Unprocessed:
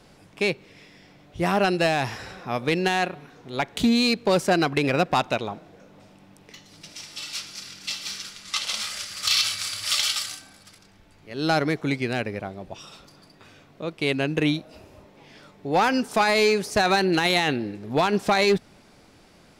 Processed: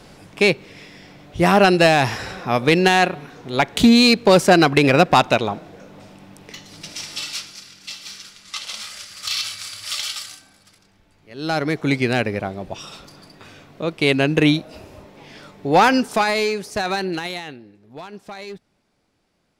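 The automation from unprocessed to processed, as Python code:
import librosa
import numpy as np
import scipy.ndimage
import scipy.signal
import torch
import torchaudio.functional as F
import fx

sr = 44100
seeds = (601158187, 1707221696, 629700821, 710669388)

y = fx.gain(x, sr, db=fx.line((7.15, 8.0), (7.67, -3.0), (11.37, -3.0), (11.97, 7.0), (15.87, 7.0), (16.53, -2.5), (17.08, -2.5), (17.64, -15.0)))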